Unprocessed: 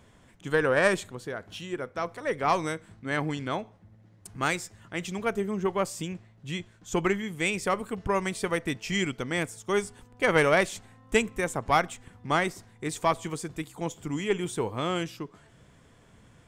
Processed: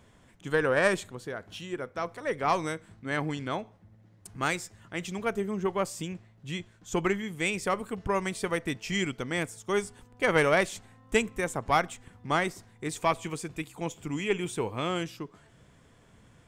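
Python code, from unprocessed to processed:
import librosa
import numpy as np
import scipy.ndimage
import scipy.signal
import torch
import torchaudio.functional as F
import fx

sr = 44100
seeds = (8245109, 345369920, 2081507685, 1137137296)

y = fx.peak_eq(x, sr, hz=2500.0, db=7.0, octaves=0.3, at=(12.99, 14.89))
y = y * librosa.db_to_amplitude(-1.5)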